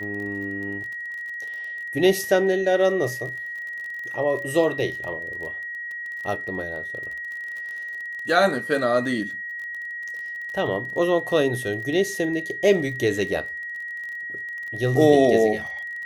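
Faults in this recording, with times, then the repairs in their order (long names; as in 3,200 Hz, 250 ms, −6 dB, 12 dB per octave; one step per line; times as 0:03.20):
surface crackle 27 per second −32 dBFS
whistle 1,900 Hz −30 dBFS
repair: click removal
notch filter 1,900 Hz, Q 30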